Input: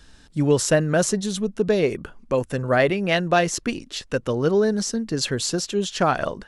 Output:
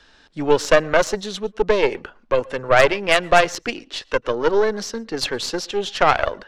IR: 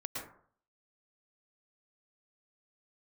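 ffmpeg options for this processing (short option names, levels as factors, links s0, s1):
-filter_complex "[0:a]acrossover=split=350 5400:gain=0.2 1 0.0794[s0][s1][s2];[s0][s1][s2]amix=inputs=3:normalize=0,aeval=exprs='0.562*(cos(1*acos(clip(val(0)/0.562,-1,1)))-cos(1*PI/2))+0.0562*(cos(5*acos(clip(val(0)/0.562,-1,1)))-cos(5*PI/2))+0.0794*(cos(6*acos(clip(val(0)/0.562,-1,1)))-cos(6*PI/2))+0.0447*(cos(7*acos(clip(val(0)/0.562,-1,1)))-cos(7*PI/2))':c=same,asplit=2[s3][s4];[1:a]atrim=start_sample=2205,atrim=end_sample=6615[s5];[s4][s5]afir=irnorm=-1:irlink=0,volume=0.0708[s6];[s3][s6]amix=inputs=2:normalize=0,volume=1.58"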